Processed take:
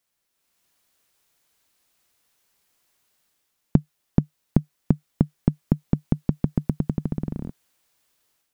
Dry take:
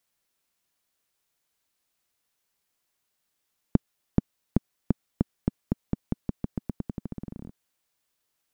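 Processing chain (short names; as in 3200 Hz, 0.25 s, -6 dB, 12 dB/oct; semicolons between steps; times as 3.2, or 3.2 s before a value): AGC gain up to 9 dB; dynamic EQ 150 Hz, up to +8 dB, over -40 dBFS, Q 5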